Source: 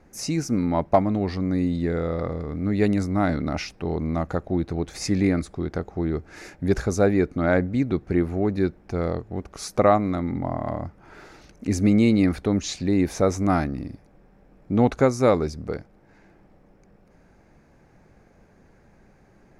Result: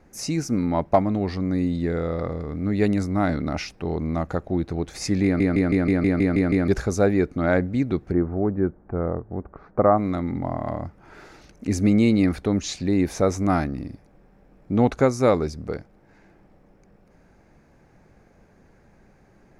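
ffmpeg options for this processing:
-filter_complex "[0:a]asplit=3[a][b][c];[a]afade=t=out:st=8.11:d=0.02[d];[b]lowpass=f=1.5k:w=0.5412,lowpass=f=1.5k:w=1.3066,afade=t=in:st=8.11:d=0.02,afade=t=out:st=9.97:d=0.02[e];[c]afade=t=in:st=9.97:d=0.02[f];[d][e][f]amix=inputs=3:normalize=0,asplit=10[g][h][i][j][k][l][m][n][o][p];[g]atrim=end=5.402[q];[h]atrim=start=5.238:end=5.402[r];[i]atrim=start=5.238:end=5.402[s];[j]atrim=start=5.238:end=5.402[t];[k]atrim=start=5.238:end=5.402[u];[l]atrim=start=5.238:end=5.402[v];[m]atrim=start=5.238:end=5.402[w];[n]atrim=start=5.238:end=5.402[x];[o]atrim=start=5.238:end=5.402[y];[p]atrim=start=6.678[z];[q][r]acrossfade=d=0.004:c1=hsin:c2=hsin[aa];[aa][s]acrossfade=d=0.004:c1=hsin:c2=hsin[ab];[ab][t]acrossfade=d=0.004:c1=hsin:c2=hsin[ac];[ac][u]acrossfade=d=0.004:c1=hsin:c2=hsin[ad];[ad][v]acrossfade=d=0.004:c1=hsin:c2=hsin[ae];[ae][w]acrossfade=d=0.004:c1=hsin:c2=hsin[af];[af][x]acrossfade=d=0.004:c1=hsin:c2=hsin[ag];[ag][y]acrossfade=d=0.004:c1=hsin:c2=hsin[ah];[ah][z]acrossfade=d=0.004:c1=hsin:c2=hsin"

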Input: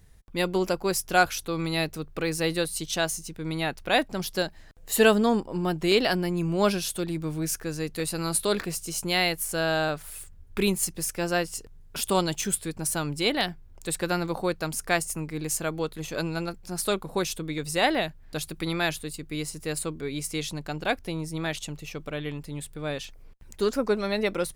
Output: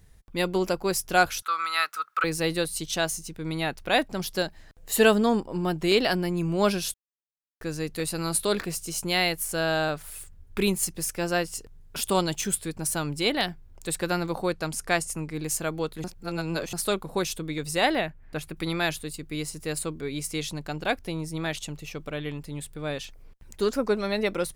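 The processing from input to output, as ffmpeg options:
-filter_complex "[0:a]asettb=1/sr,asplit=3[a][b][c];[a]atrim=end=1.424[d];[b]atrim=start=1.42:end=2.24,asetpts=PTS-STARTPTS,afade=t=in:d=0.004:c=qsin,afade=t=out:st=0.816:d=0.004:c=qsin,highpass=f=1.3k:t=q:w=14[e];[c]atrim=start=2.236[f];[d][e]acrossfade=d=0.004:c1=hsin:c2=qsin[g];[g][f]acrossfade=d=0.004:c1=qsin:c2=hsin,asettb=1/sr,asplit=3[h][i][j];[h]atrim=end=14.534[k];[i]atrim=start=14.53:end=15.34,asetpts=PTS-STARTPTS,afade=t=in:d=0.004:c=qsin,afade=t=out:st=0.806:d=0.004:c=qsin,lowpass=12k[l];[j]atrim=start=15.336[m];[k][l]acrossfade=d=0.004:c1=hsin:c2=qsin[n];[n][m]acrossfade=d=0.004:c1=qsin:c2=hsin,asettb=1/sr,asplit=3[o][p][q];[o]atrim=end=18.014[r];[p]atrim=start=18.01:end=18.57,asetpts=PTS-STARTPTS,afade=t=in:d=0.004:c=qsin,afade=t=out:st=0.556:d=0.004:c=qsin,highshelf=f=3k:t=q:w=1.5:g=-7.5[s];[q]atrim=start=18.566[t];[r][s]acrossfade=d=0.004:c1=hsin:c2=qsin[u];[u][t]acrossfade=d=0.004:c1=qsin:c2=hsin,asplit=5[v][w][x][y][z];[v]atrim=end=6.94,asetpts=PTS-STARTPTS,afade=t=out:st=6.936:d=0.004:c=hsin[aa];[w]atrim=start=6.94:end=7.61,asetpts=PTS-STARTPTS,volume=0[ab];[x]atrim=start=7.61:end=16.042,asetpts=PTS-STARTPTS,afade=t=in:d=0.004:c=hsin[ac];[y]atrim=start=16.038:end=16.732,asetpts=PTS-STARTPTS,areverse[ad];[z]atrim=start=16.728[ae];[aa][ab][ac]concat=n=3:v=0:a=1[af];[af][ad]acrossfade=d=0.004:c1=hsin:c2=hsin[ag];[ag][ae]acrossfade=d=0.004:c1=hsin:c2=hsin"

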